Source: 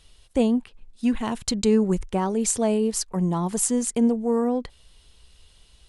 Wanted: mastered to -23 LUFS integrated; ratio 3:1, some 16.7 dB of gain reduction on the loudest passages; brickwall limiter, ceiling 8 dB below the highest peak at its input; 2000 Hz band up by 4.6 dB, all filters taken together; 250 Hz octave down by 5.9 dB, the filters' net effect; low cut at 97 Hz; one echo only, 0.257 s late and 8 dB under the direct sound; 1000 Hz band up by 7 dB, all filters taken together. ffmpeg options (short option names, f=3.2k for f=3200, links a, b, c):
-af "highpass=97,equalizer=f=250:t=o:g=-7,equalizer=f=1k:t=o:g=8.5,equalizer=f=2k:t=o:g=3.5,acompressor=threshold=-41dB:ratio=3,alimiter=level_in=7dB:limit=-24dB:level=0:latency=1,volume=-7dB,aecho=1:1:257:0.398,volume=17.5dB"